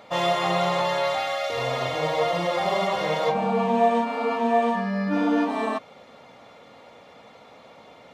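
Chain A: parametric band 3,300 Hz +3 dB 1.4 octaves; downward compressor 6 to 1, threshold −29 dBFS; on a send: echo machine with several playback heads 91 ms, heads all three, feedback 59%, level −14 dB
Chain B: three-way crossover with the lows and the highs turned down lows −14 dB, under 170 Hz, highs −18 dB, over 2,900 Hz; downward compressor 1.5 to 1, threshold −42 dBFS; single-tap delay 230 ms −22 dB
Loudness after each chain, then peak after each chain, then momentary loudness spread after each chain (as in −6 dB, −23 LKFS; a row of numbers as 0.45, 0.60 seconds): −31.5, −32.0 LKFS; −19.5, −18.0 dBFS; 16, 19 LU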